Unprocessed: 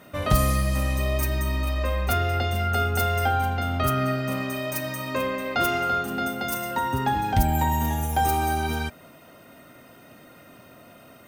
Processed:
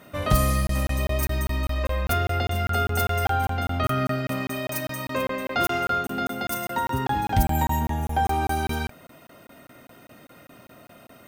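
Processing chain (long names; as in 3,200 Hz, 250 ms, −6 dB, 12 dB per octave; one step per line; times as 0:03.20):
0:07.79–0:08.46: high-shelf EQ 3,200 Hz → 6,300 Hz −11.5 dB
regular buffer underruns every 0.20 s, samples 1,024, zero, from 0:00.67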